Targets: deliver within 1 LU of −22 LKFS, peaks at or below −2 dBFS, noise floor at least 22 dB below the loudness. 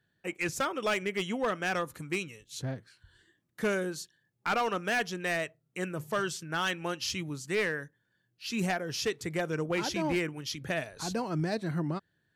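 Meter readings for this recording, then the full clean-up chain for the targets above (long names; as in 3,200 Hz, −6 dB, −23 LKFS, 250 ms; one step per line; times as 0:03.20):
share of clipped samples 1.3%; peaks flattened at −23.5 dBFS; integrated loudness −32.5 LKFS; sample peak −23.5 dBFS; target loudness −22.0 LKFS
→ clipped peaks rebuilt −23.5 dBFS
level +10.5 dB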